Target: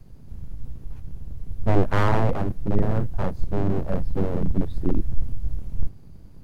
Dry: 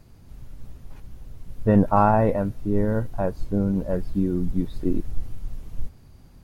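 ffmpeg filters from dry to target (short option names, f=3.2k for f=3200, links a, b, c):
-filter_complex "[0:a]lowshelf=f=280:g=6,acrossover=split=160|620|1800[a][b][c][d];[a]acontrast=54[e];[e][b][c][d]amix=inputs=4:normalize=0,aeval=exprs='abs(val(0))':c=same,volume=-4.5dB"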